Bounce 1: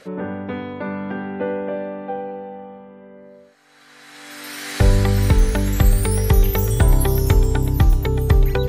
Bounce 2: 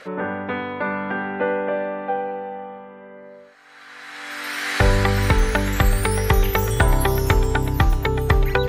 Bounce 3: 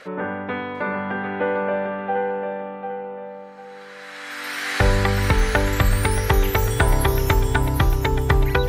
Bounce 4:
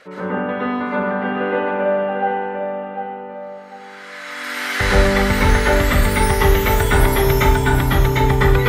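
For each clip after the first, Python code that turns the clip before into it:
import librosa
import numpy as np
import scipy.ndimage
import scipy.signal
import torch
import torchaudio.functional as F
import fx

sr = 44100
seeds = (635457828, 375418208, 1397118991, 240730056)

y1 = fx.peak_eq(x, sr, hz=1500.0, db=12.0, octaves=3.0)
y1 = y1 * 10.0 ** (-4.0 / 20.0)
y2 = fx.echo_feedback(y1, sr, ms=747, feedback_pct=28, wet_db=-7.0)
y2 = y2 * 10.0 ** (-1.0 / 20.0)
y3 = fx.rev_plate(y2, sr, seeds[0], rt60_s=0.61, hf_ratio=0.9, predelay_ms=100, drr_db=-8.5)
y3 = y3 * 10.0 ** (-4.0 / 20.0)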